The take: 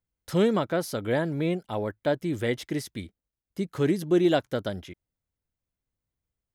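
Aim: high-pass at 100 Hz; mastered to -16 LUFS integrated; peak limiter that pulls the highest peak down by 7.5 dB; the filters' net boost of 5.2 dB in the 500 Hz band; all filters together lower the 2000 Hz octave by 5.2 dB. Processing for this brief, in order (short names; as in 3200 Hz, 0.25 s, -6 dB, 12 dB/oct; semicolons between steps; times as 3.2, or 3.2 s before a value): HPF 100 Hz; bell 500 Hz +7 dB; bell 2000 Hz -7.5 dB; gain +10.5 dB; limiter -4.5 dBFS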